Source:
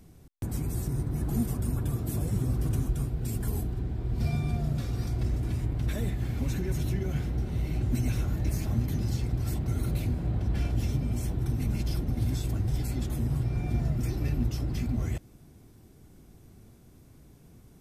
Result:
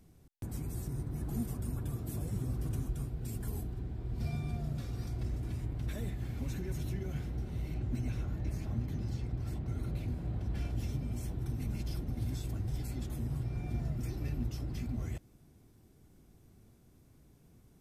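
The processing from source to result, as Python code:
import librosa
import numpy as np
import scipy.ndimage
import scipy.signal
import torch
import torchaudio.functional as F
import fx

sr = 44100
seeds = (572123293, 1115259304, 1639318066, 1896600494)

y = fx.lowpass(x, sr, hz=3500.0, slope=6, at=(7.74, 10.08))
y = F.gain(torch.from_numpy(y), -7.5).numpy()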